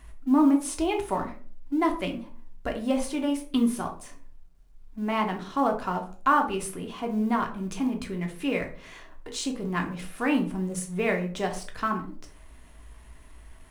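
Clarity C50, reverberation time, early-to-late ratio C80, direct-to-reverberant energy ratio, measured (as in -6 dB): 10.5 dB, 0.45 s, 15.5 dB, 2.5 dB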